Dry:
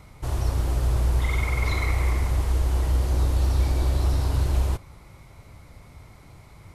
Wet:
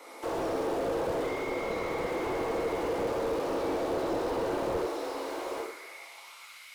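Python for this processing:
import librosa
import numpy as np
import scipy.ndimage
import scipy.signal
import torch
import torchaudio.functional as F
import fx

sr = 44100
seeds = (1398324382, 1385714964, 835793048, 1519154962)

p1 = scipy.signal.sosfilt(scipy.signal.butter(4, 300.0, 'highpass', fs=sr, output='sos'), x)
p2 = fx.hum_notches(p1, sr, base_hz=50, count=9)
p3 = fx.over_compress(p2, sr, threshold_db=-38.0, ratio=-1.0)
p4 = p2 + (p3 * 10.0 ** (1.0 / 20.0))
p5 = fx.filter_sweep_highpass(p4, sr, from_hz=380.0, to_hz=2800.0, start_s=4.74, end_s=6.14, q=2.3)
p6 = p5 + fx.echo_multitap(p5, sr, ms=(68, 845), db=(-4.5, -6.0), dry=0)
p7 = fx.rev_double_slope(p6, sr, seeds[0], early_s=0.61, late_s=1.7, knee_db=-18, drr_db=-2.0)
p8 = fx.slew_limit(p7, sr, full_power_hz=49.0)
y = p8 * 10.0 ** (-6.0 / 20.0)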